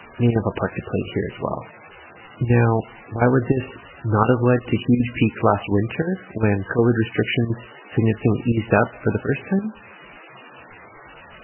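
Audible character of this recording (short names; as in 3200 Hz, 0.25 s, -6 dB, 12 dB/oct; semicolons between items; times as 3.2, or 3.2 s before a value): chopped level 2.8 Hz, depth 65%, duty 85%; a quantiser's noise floor 6-bit, dither triangular; MP3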